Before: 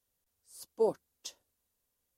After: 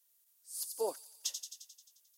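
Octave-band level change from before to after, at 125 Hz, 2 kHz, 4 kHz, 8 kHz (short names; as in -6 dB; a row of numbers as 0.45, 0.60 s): under -20 dB, n/a, +7.5 dB, +10.5 dB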